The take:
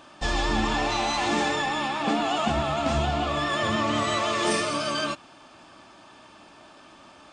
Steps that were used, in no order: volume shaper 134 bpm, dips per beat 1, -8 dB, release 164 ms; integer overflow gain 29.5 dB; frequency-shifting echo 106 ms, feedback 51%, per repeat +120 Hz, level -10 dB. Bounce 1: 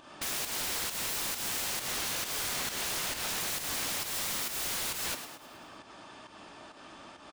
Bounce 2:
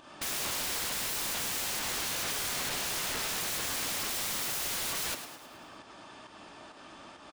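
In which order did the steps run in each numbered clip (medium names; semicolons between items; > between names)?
integer overflow > frequency-shifting echo > volume shaper; volume shaper > integer overflow > frequency-shifting echo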